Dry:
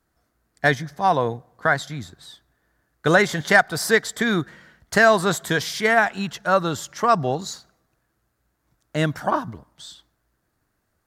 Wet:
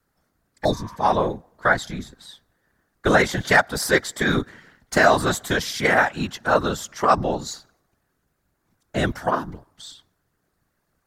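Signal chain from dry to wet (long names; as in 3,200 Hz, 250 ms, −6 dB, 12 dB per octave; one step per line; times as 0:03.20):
random phases in short frames
healed spectral selection 0:00.67–0:00.93, 910–3,500 Hz after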